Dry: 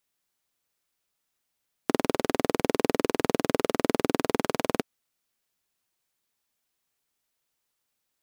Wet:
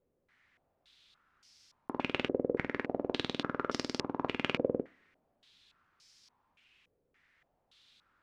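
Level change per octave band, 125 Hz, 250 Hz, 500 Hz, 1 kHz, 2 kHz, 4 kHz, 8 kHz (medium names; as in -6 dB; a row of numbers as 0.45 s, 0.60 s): -7.0 dB, -8.5 dB, -8.5 dB, -8.5 dB, -4.0 dB, -3.0 dB, -13.0 dB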